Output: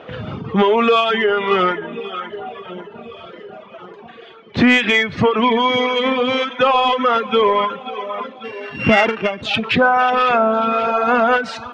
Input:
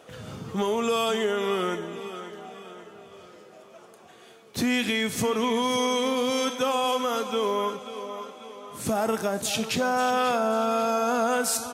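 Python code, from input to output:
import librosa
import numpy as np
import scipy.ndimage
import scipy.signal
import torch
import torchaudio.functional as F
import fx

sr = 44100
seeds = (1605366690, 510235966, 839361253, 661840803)

p1 = fx.sample_sort(x, sr, block=16, at=(8.43, 9.41), fade=0.02)
p2 = scipy.signal.sosfilt(scipy.signal.butter(4, 3300.0, 'lowpass', fs=sr, output='sos'), p1)
p3 = p2 + fx.echo_feedback(p2, sr, ms=1097, feedback_pct=53, wet_db=-20.5, dry=0)
p4 = fx.dynamic_eq(p3, sr, hz=1800.0, q=1.0, threshold_db=-43.0, ratio=4.0, max_db=5)
p5 = fx.rider(p4, sr, range_db=4, speed_s=2.0)
p6 = p4 + (p5 * librosa.db_to_amplitude(3.0))
p7 = fx.comb_fb(p6, sr, f0_hz=58.0, decay_s=0.32, harmonics='all', damping=0.0, mix_pct=30, at=(1.0, 1.51))
p8 = 10.0 ** (-6.0 / 20.0) * np.tanh(p7 / 10.0 ** (-6.0 / 20.0))
p9 = fx.dereverb_blind(p8, sr, rt60_s=1.9)
p10 = fx.end_taper(p9, sr, db_per_s=150.0)
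y = p10 * librosa.db_to_amplitude(4.5)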